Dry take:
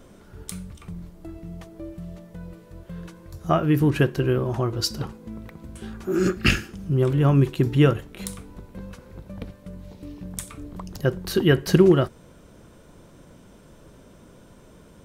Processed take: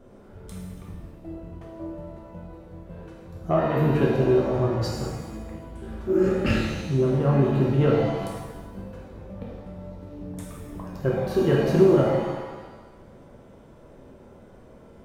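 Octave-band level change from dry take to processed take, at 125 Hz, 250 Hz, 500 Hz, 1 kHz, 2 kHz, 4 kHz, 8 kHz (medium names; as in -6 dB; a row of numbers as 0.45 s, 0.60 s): -2.0 dB, -1.0 dB, +2.0 dB, +1.0 dB, -5.0 dB, -8.0 dB, -9.5 dB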